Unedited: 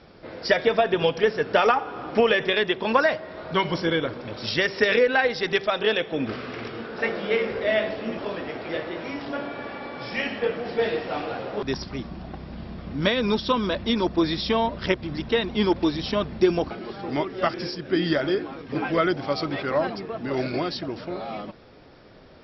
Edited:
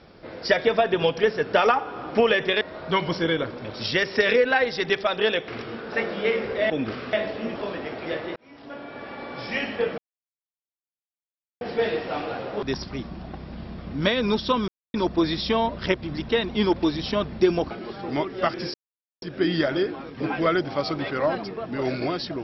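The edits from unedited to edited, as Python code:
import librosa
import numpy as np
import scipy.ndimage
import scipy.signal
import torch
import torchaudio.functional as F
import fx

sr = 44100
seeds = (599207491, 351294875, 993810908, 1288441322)

y = fx.edit(x, sr, fx.cut(start_s=2.61, length_s=0.63),
    fx.move(start_s=6.11, length_s=0.43, to_s=7.76),
    fx.fade_in_span(start_s=8.99, length_s=0.95),
    fx.insert_silence(at_s=10.61, length_s=1.63),
    fx.silence(start_s=13.68, length_s=0.26),
    fx.insert_silence(at_s=17.74, length_s=0.48), tone=tone)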